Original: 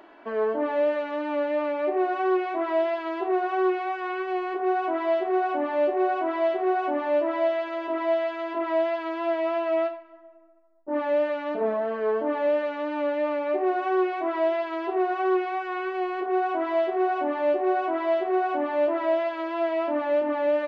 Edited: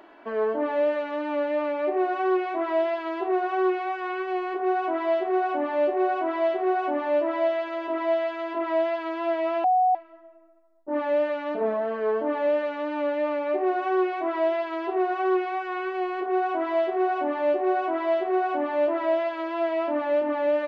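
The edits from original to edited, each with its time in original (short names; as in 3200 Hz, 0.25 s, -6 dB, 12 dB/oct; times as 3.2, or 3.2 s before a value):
9.64–9.95 bleep 739 Hz -17 dBFS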